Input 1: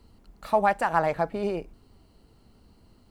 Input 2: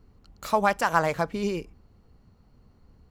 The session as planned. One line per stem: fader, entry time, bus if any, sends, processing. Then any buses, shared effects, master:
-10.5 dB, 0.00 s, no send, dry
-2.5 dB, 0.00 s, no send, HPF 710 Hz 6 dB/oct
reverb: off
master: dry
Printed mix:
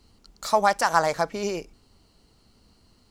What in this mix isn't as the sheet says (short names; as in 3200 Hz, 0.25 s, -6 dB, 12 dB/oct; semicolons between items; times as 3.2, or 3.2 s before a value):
stem 1 -10.5 dB -> -3.5 dB; master: extra bell 5800 Hz +10.5 dB 2 oct